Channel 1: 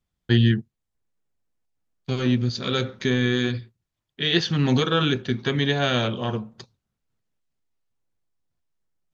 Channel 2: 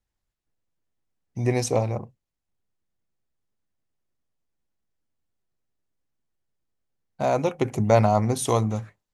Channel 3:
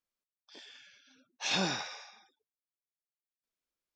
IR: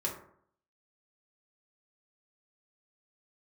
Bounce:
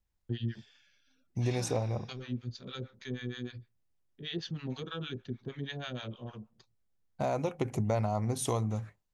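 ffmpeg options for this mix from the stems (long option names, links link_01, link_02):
-filter_complex "[0:a]acrossover=split=680[link_01][link_02];[link_01]aeval=exprs='val(0)*(1-1/2+1/2*cos(2*PI*6.4*n/s))':channel_layout=same[link_03];[link_02]aeval=exprs='val(0)*(1-1/2-1/2*cos(2*PI*6.4*n/s))':channel_layout=same[link_04];[link_03][link_04]amix=inputs=2:normalize=0,volume=-5dB[link_05];[1:a]volume=-4dB,asplit=2[link_06][link_07];[2:a]volume=-10dB[link_08];[link_07]apad=whole_len=402806[link_09];[link_05][link_09]sidechaingate=range=-9dB:threshold=-46dB:ratio=16:detection=peak[link_10];[link_10][link_06][link_08]amix=inputs=3:normalize=0,lowshelf=frequency=110:gain=7,acompressor=threshold=-29dB:ratio=3"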